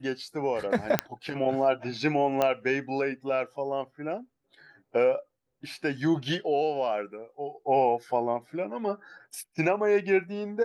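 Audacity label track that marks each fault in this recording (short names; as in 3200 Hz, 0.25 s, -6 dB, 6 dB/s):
0.990000	0.990000	pop -7 dBFS
2.420000	2.420000	pop -12 dBFS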